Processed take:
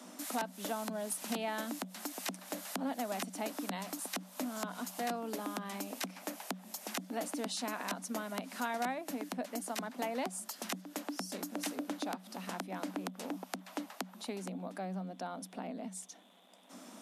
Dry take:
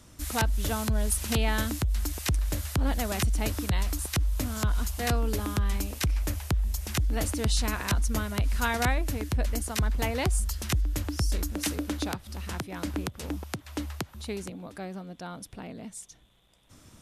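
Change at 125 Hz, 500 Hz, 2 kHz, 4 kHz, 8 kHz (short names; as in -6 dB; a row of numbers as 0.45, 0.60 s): -21.5, -4.5, -8.5, -8.5, -8.5 dB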